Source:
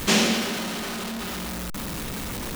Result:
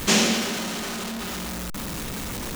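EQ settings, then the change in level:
dynamic equaliser 6,700 Hz, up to +4 dB, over −42 dBFS, Q 1.9
0.0 dB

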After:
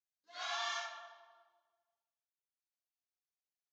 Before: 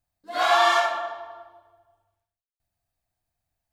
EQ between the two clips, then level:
resonant band-pass 6,400 Hz, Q 5.9
high-frequency loss of the air 270 metres
+11.0 dB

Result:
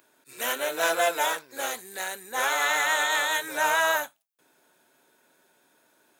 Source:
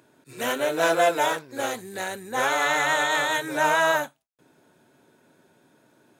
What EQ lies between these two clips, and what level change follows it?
high-pass filter 910 Hz 6 dB per octave
high-shelf EQ 12,000 Hz +11 dB
0.0 dB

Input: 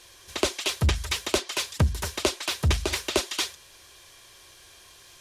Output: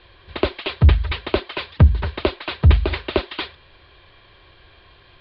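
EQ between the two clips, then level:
Butterworth low-pass 4,600 Hz 72 dB per octave
high-frequency loss of the air 250 metres
low-shelf EQ 140 Hz +7.5 dB
+5.5 dB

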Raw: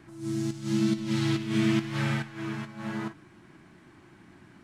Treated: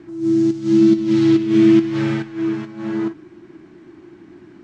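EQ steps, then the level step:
low-pass filter 7,200 Hz 24 dB per octave
parametric band 340 Hz +14.5 dB 0.77 octaves
+2.5 dB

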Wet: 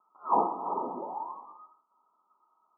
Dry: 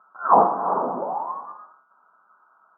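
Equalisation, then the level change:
Chebyshev low-pass with heavy ripple 1,300 Hz, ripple 9 dB
high-frequency loss of the air 480 metres
low-shelf EQ 120 Hz −8 dB
−3.0 dB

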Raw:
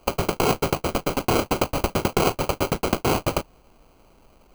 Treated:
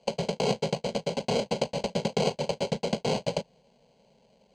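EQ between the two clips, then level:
loudspeaker in its box 120–6,300 Hz, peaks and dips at 280 Hz −7 dB, 720 Hz −6 dB, 1,300 Hz −4 dB, 2,500 Hz −7 dB, 5,700 Hz −6 dB
phaser with its sweep stopped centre 330 Hz, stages 6
0.0 dB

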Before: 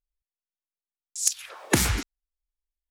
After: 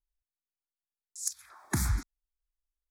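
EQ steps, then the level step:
low-shelf EQ 150 Hz +8.5 dB
phaser with its sweep stopped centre 1,200 Hz, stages 4
−8.0 dB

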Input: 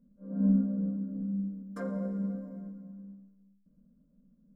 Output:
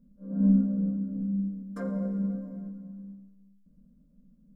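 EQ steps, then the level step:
low-shelf EQ 160 Hz +9 dB
0.0 dB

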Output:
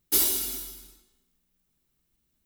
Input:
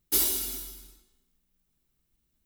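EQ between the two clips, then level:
low-shelf EQ 75 Hz −6 dB
+2.0 dB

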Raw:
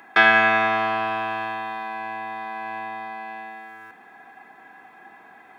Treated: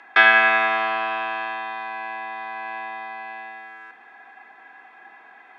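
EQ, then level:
high-pass filter 200 Hz 12 dB per octave
low-pass filter 3,100 Hz 12 dB per octave
spectral tilt +3 dB per octave
0.0 dB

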